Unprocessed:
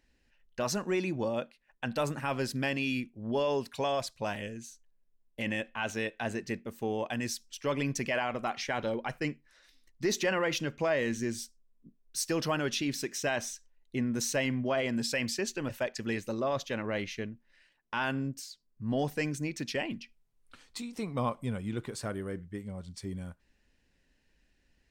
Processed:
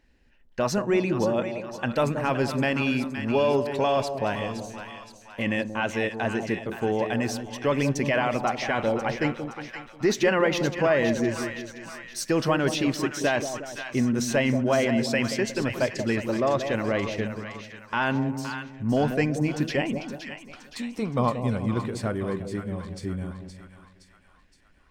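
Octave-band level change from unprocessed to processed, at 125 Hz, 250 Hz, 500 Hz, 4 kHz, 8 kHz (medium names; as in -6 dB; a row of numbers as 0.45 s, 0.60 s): +8.5 dB, +8.5 dB, +8.0 dB, +3.5 dB, +1.5 dB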